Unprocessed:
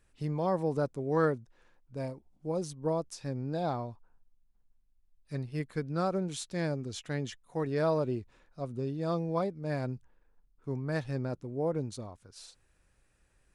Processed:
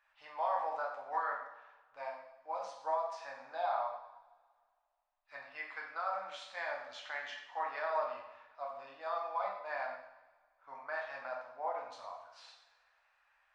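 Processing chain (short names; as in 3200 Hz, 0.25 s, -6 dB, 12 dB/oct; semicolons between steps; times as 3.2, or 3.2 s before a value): inverse Chebyshev high-pass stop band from 410 Hz, stop band 40 dB; limiter -33 dBFS, peak gain reduction 11 dB; tape spacing loss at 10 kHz 40 dB; reverb, pre-delay 3 ms, DRR -2 dB; gain +8.5 dB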